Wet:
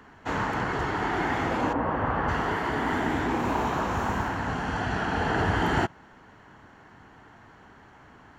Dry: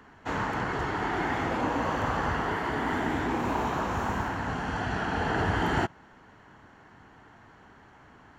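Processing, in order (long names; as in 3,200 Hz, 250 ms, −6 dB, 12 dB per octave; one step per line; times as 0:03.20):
0:01.72–0:02.27: low-pass filter 1,400 Hz → 2,400 Hz 12 dB per octave
level +2 dB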